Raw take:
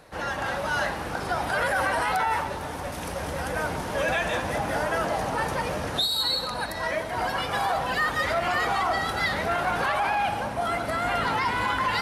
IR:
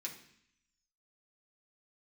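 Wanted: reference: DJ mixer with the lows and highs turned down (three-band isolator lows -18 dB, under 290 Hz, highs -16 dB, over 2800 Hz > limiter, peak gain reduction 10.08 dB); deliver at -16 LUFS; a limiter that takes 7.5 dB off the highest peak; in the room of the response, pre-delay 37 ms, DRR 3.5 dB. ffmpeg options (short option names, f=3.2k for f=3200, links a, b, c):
-filter_complex "[0:a]alimiter=limit=-21dB:level=0:latency=1,asplit=2[a][b];[1:a]atrim=start_sample=2205,adelay=37[c];[b][c]afir=irnorm=-1:irlink=0,volume=-1.5dB[d];[a][d]amix=inputs=2:normalize=0,acrossover=split=290 2800:gain=0.126 1 0.158[e][f][g];[e][f][g]amix=inputs=3:normalize=0,volume=18.5dB,alimiter=limit=-8.5dB:level=0:latency=1"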